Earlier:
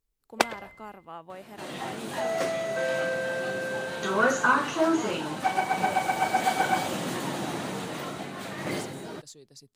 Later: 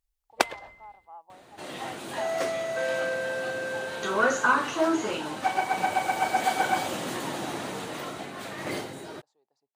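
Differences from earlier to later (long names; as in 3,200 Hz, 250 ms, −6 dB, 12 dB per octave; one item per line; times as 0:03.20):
speech: add resonant band-pass 830 Hz, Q 5.4
master: add parametric band 170 Hz −6 dB 0.93 octaves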